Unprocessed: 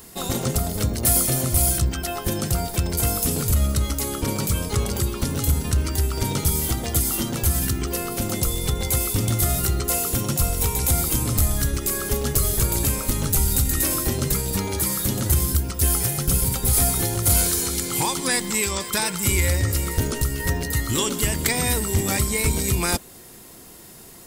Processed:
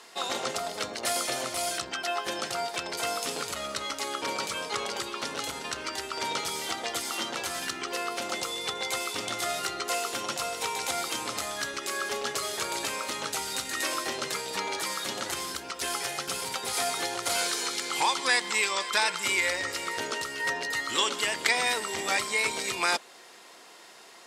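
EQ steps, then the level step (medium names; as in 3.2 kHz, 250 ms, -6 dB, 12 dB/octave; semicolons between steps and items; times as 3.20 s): band-pass 680–4600 Hz; +2.0 dB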